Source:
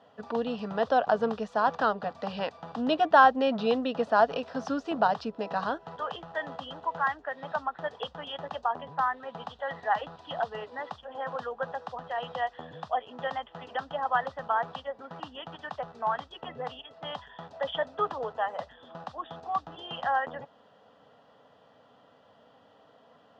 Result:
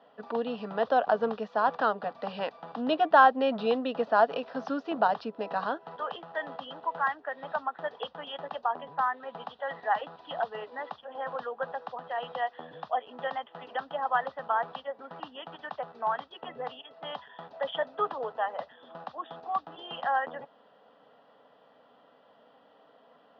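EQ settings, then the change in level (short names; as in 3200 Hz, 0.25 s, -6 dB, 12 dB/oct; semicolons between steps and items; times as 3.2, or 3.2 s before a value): HPF 220 Hz 12 dB/oct; LPF 5200 Hz 24 dB/oct; air absorption 87 m; 0.0 dB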